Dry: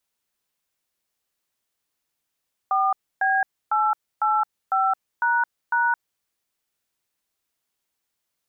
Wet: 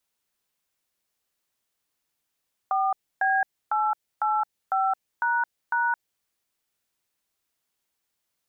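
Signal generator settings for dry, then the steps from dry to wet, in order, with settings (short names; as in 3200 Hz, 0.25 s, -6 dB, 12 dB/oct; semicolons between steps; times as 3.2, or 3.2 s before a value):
DTMF "4B885##", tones 0.218 s, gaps 0.284 s, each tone -20.5 dBFS
dynamic EQ 1200 Hz, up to -6 dB, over -36 dBFS, Q 2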